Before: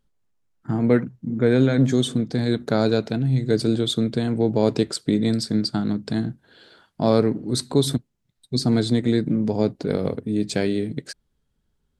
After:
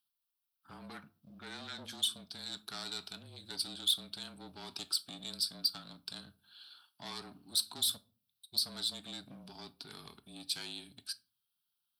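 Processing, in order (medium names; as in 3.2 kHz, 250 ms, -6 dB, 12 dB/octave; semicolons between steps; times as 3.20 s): static phaser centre 2 kHz, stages 6; saturation -20.5 dBFS, distortion -12 dB; frequency shift -29 Hz; differentiator; simulated room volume 240 m³, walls furnished, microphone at 0.33 m; trim +5 dB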